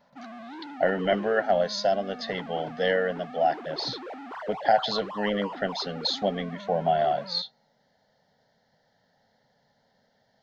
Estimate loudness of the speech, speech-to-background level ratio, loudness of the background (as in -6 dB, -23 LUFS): -27.0 LUFS, 13.5 dB, -40.5 LUFS